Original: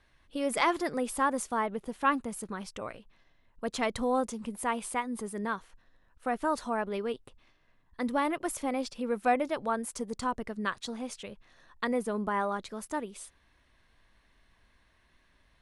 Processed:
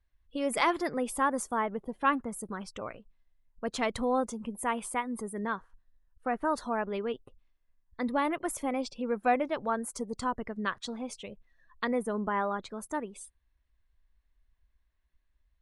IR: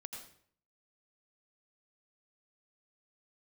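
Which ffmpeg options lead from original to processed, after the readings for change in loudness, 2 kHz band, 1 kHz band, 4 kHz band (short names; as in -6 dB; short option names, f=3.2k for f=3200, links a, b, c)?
0.0 dB, 0.0 dB, 0.0 dB, -0.5 dB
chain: -af "afftdn=nr=20:nf=-52"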